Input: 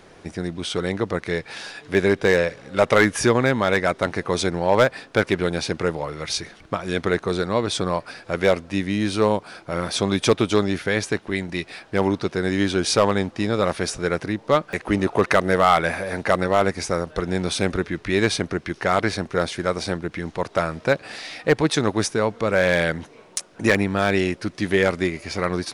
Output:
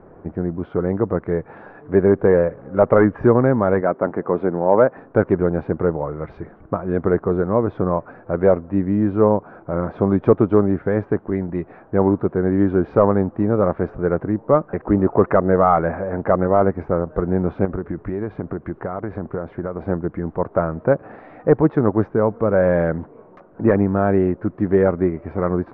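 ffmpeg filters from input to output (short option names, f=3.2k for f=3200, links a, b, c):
-filter_complex "[0:a]asettb=1/sr,asplit=3[a][b][c];[a]atrim=end=3.814[d];[b]atrim=start=3.81:end=4.97,asetpts=PTS-STARTPTS,afade=t=in:d=0.004:c=qsin,afade=t=out:st=1.156:d=0.004:c=qsin,highpass=180,lowpass=3.7k[e];[c]atrim=start=4.966[f];[d][e]acrossfade=d=0.004:c1=hsin:c2=qsin[g];[g][f]acrossfade=d=0.004:c1=qsin:c2=hsin,asettb=1/sr,asplit=3[h][i][j];[h]atrim=end=17.654[k];[i]atrim=start=17.65:end=19.82,asetpts=PTS-STARTPTS,afade=t=in:d=0.004:c=qsin,afade=t=out:st=2.166:d=0.004:c=qsin,acompressor=threshold=-24dB:ratio=6:attack=3.2:release=140:knee=1:detection=peak[l];[j]atrim=start=19.816[m];[k][l]acrossfade=d=0.004:c1=hsin:c2=qsin[n];[n][m]acrossfade=d=0.004:c1=qsin:c2=hsin,lowpass=f=1.2k:w=0.5412,lowpass=f=1.2k:w=1.3066,equalizer=f=930:w=1.1:g=-3,volume=5dB"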